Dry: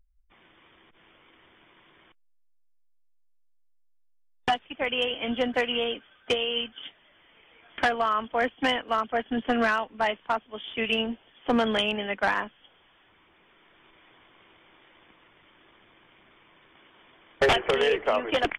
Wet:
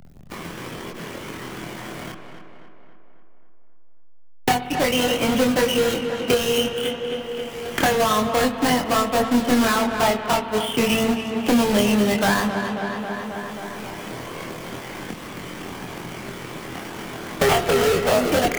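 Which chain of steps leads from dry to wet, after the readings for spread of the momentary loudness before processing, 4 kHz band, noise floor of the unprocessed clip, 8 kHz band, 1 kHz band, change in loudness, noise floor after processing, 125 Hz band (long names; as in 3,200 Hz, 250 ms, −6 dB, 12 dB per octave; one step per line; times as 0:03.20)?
10 LU, +4.5 dB, −62 dBFS, +21.5 dB, +5.5 dB, +6.0 dB, −38 dBFS, +15.5 dB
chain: each half-wave held at its own peak
parametric band 160 Hz +9 dB 1.9 octaves
leveller curve on the samples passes 1
in parallel at −1.5 dB: brickwall limiter −18.5 dBFS, peak gain reduction 10.5 dB
on the sum: spring reverb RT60 1.5 s, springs 56 ms, chirp 50 ms, DRR 11.5 dB
multi-voice chorus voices 4, 0.13 Hz, delay 24 ms, depth 1.4 ms
on a send: tape delay 270 ms, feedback 61%, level −10 dB, low-pass 2,800 Hz
on the sum: multiband upward and downward compressor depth 70%
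level −2 dB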